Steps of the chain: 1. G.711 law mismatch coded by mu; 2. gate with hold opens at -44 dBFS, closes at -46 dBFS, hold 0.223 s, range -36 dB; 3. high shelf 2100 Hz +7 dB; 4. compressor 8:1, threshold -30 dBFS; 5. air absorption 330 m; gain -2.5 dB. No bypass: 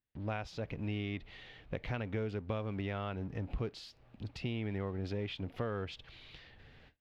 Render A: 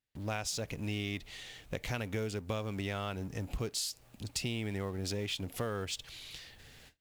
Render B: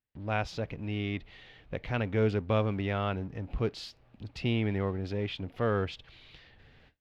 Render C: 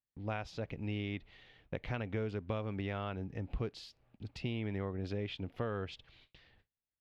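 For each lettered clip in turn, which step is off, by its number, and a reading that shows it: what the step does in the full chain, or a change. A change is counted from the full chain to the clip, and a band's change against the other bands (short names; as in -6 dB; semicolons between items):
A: 5, 4 kHz band +8.0 dB; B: 4, mean gain reduction 4.0 dB; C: 1, distortion -22 dB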